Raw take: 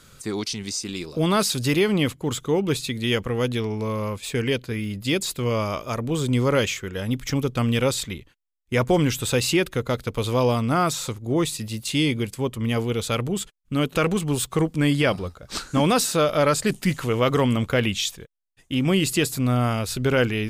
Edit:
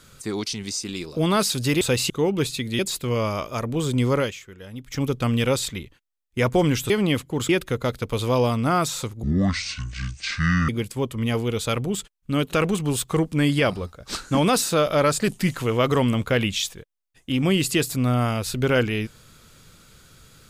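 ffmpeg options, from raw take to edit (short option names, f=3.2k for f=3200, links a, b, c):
-filter_complex "[0:a]asplit=10[a][b][c][d][e][f][g][h][i][j];[a]atrim=end=1.812[k];[b]atrim=start=9.248:end=9.542[l];[c]atrim=start=2.398:end=3.092[m];[d]atrim=start=5.138:end=6.68,asetpts=PTS-STARTPTS,afade=t=out:st=1.362:d=0.18:silence=0.266073[n];[e]atrim=start=6.68:end=7.21,asetpts=PTS-STARTPTS,volume=-11.5dB[o];[f]atrim=start=7.21:end=9.252,asetpts=PTS-STARTPTS,afade=t=in:d=0.18:silence=0.266073[p];[g]atrim=start=1.808:end=2.402[q];[h]atrim=start=9.538:end=11.284[r];[i]atrim=start=11.28:end=12.11,asetpts=PTS-STARTPTS,asetrate=25137,aresample=44100[s];[j]atrim=start=12.106[t];[k][l]acrossfade=d=0.004:c1=hsin:c2=hsin[u];[u][m]acrossfade=d=0.004:c1=hsin:c2=hsin[v];[n][o][p]concat=n=3:v=0:a=1[w];[v][w]acrossfade=d=0.004:c1=hsin:c2=hsin[x];[x][q]acrossfade=d=0.004:c1=hsin:c2=hsin[y];[y][r]acrossfade=d=0.004:c1=hsin:c2=hsin[z];[z][s]acrossfade=d=0.004:c1=hsin:c2=hsin[aa];[aa][t]acrossfade=d=0.004:c1=hsin:c2=hsin"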